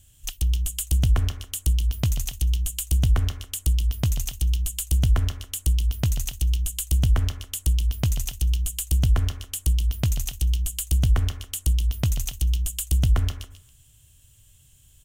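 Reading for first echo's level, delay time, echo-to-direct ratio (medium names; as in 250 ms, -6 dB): -13.0 dB, 139 ms, -12.5 dB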